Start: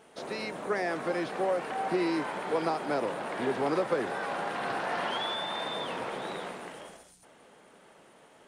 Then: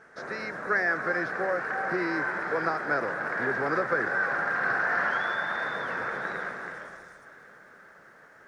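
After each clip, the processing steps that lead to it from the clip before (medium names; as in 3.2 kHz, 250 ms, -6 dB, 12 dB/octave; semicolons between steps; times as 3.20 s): FFT filter 120 Hz 0 dB, 270 Hz -6 dB, 500 Hz -3 dB, 930 Hz -5 dB, 1.6 kHz +12 dB, 3 kHz -15 dB, 5.5 kHz -3 dB, 9.5 kHz -16 dB; bit-crushed delay 342 ms, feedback 55%, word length 11-bit, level -14 dB; trim +2.5 dB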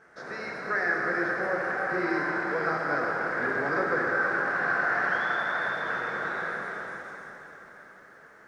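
plate-style reverb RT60 3.6 s, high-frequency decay 0.85×, DRR -1.5 dB; trim -3.5 dB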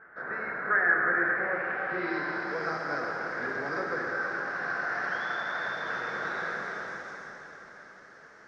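gain riding within 4 dB 2 s; low-pass sweep 1.6 kHz -> 5.6 kHz, 1.12–2.63 s; trim -4.5 dB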